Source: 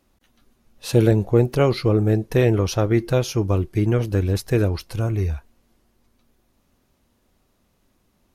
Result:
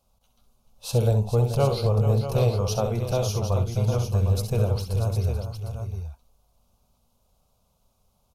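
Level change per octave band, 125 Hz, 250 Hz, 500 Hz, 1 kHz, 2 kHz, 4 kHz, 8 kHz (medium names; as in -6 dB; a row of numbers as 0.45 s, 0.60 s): -1.5 dB, -10.0 dB, -5.0 dB, -1.0 dB, -11.5 dB, -2.5 dB, -0.5 dB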